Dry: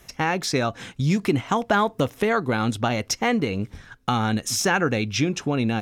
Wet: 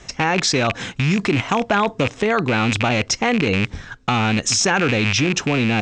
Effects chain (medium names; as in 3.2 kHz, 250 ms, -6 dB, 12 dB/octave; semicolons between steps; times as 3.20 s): rattle on loud lows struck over -30 dBFS, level -16 dBFS; steep low-pass 8.1 kHz 72 dB/octave; in parallel at +0.5 dB: compressor with a negative ratio -27 dBFS, ratio -1